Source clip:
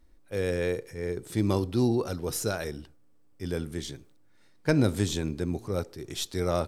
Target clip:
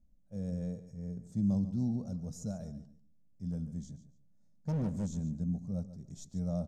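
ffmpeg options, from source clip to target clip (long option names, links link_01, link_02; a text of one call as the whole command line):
ffmpeg -i in.wav -filter_complex "[0:a]firequalizer=gain_entry='entry(120,0);entry(190,11);entry(350,-20);entry(610,-4);entry(970,-18);entry(2000,-26);entry(2800,-27);entry(6700,-4);entry(10000,-23)':delay=0.05:min_phase=1,asettb=1/sr,asplit=3[link_01][link_02][link_03];[link_01]atrim=end=3.514[link_04];[link_02]atrim=start=3.51:end=5.11,asetpts=PTS-STARTPTS,afade=type=in:duration=0.004:curve=qsin,afade=type=out:start_time=1.596:duration=0.004:curve=qsin,asoftclip=type=hard:threshold=-22.5dB[link_05];[link_03]atrim=start=5.106[link_06];[link_04][link_05]acrossfade=duration=0.004:curve1=hsin:curve2=qsin[link_07];[link_07][link_06]acrossfade=duration=0.004:curve1=qsin:curve2=hsin,aecho=1:1:143|286:0.2|0.0419,volume=-7dB" out.wav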